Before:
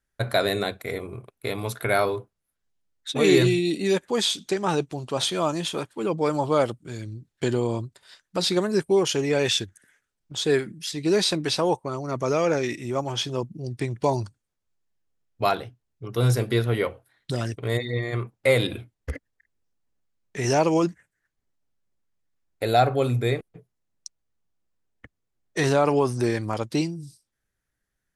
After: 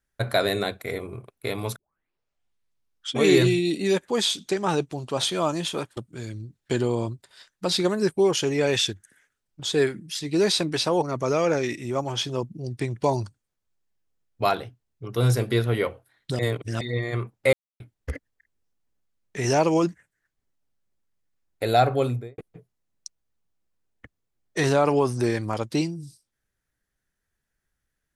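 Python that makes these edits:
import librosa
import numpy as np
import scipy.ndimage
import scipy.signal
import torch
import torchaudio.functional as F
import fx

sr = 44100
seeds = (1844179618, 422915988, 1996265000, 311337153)

y = fx.studio_fade_out(x, sr, start_s=22.98, length_s=0.4)
y = fx.edit(y, sr, fx.tape_start(start_s=1.76, length_s=1.49),
    fx.cut(start_s=5.97, length_s=0.72),
    fx.cut(start_s=11.74, length_s=0.28),
    fx.reverse_span(start_s=17.39, length_s=0.42),
    fx.silence(start_s=18.53, length_s=0.27), tone=tone)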